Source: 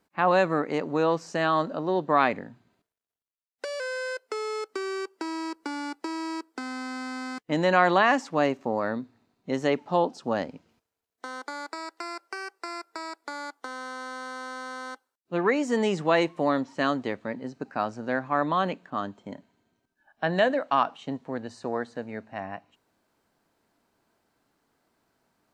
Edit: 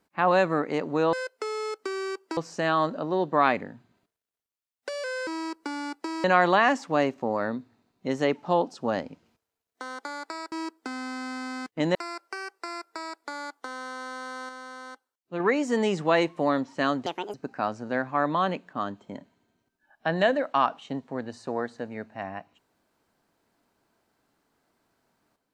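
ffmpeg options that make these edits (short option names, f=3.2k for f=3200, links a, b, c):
-filter_complex "[0:a]asplit=11[a][b][c][d][e][f][g][h][i][j][k];[a]atrim=end=1.132[l];[b]atrim=start=4.028:end=5.272[m];[c]atrim=start=1.128:end=4.032[n];[d]atrim=start=5.268:end=6.242[o];[e]atrim=start=7.668:end=11.952[p];[f]atrim=start=6.238:end=7.672[q];[g]atrim=start=11.948:end=14.492[r];[h]atrim=start=14.488:end=15.402,asetpts=PTS-STARTPTS,volume=-4.5dB[s];[i]atrim=start=15.398:end=17.064[t];[j]atrim=start=17.06:end=17.51,asetpts=PTS-STARTPTS,asetrate=71001,aresample=44100,atrim=end_sample=12326,asetpts=PTS-STARTPTS[u];[k]atrim=start=17.506[v];[l][m]acrossfade=d=0.004:c1=hsin:c2=hsin[w];[w][n]acrossfade=d=0.004:c1=hsin:c2=hsin[x];[x][o]acrossfade=d=0.004:c1=hsin:c2=hsin[y];[y][p]acrossfade=d=0.004:c1=hsin:c2=hsin[z];[z][q]acrossfade=d=0.004:c1=hsin:c2=hsin[aa];[aa][r]acrossfade=d=0.004:c1=hsin:c2=hsin[ab];[ab][s]acrossfade=d=0.004:c1=hsin:c2=hsin[ac];[ac][t]acrossfade=d=0.004:c1=hsin:c2=hsin[ad];[ad][u]acrossfade=d=0.004:c1=hsin:c2=hsin[ae];[ae][v]acrossfade=d=0.004:c1=hsin:c2=hsin"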